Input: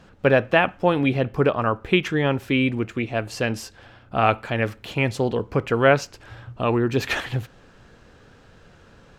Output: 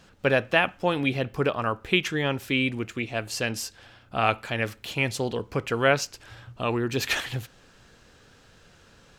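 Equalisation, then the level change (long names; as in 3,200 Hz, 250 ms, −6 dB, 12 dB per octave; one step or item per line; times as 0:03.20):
high-shelf EQ 2,700 Hz +12 dB
−6.0 dB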